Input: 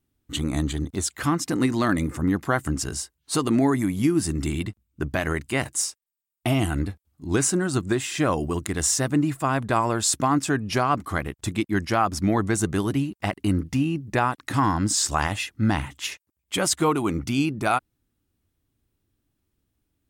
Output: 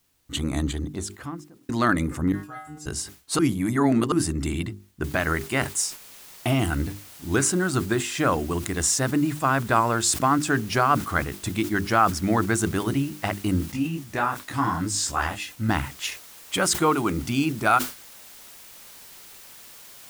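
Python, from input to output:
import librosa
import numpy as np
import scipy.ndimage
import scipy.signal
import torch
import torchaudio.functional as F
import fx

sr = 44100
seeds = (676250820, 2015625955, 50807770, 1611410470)

y = fx.studio_fade_out(x, sr, start_s=0.65, length_s=1.04)
y = fx.stiff_resonator(y, sr, f0_hz=150.0, decay_s=0.69, stiffness=0.002, at=(2.32, 2.86))
y = fx.noise_floor_step(y, sr, seeds[0], at_s=5.04, before_db=-69, after_db=-46, tilt_db=0.0)
y = fx.detune_double(y, sr, cents=28, at=(13.72, 15.69))
y = fx.edit(y, sr, fx.reverse_span(start_s=3.39, length_s=0.73), tone=tone)
y = fx.dynamic_eq(y, sr, hz=1400.0, q=2.8, threshold_db=-38.0, ratio=4.0, max_db=6)
y = fx.hum_notches(y, sr, base_hz=50, count=8)
y = fx.sustainer(y, sr, db_per_s=150.0)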